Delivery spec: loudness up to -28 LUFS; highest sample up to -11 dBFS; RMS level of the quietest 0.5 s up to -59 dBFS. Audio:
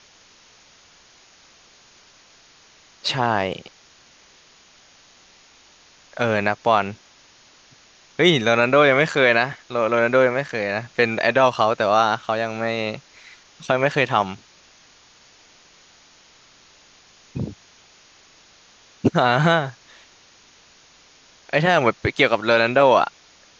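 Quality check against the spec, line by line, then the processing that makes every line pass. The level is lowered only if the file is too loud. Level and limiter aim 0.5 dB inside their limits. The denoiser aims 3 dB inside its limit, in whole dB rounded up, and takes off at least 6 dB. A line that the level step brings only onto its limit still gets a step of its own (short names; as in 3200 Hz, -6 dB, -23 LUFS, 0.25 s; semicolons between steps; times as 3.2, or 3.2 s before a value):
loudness -19.5 LUFS: fail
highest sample -3.0 dBFS: fail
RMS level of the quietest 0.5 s -52 dBFS: fail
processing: gain -9 dB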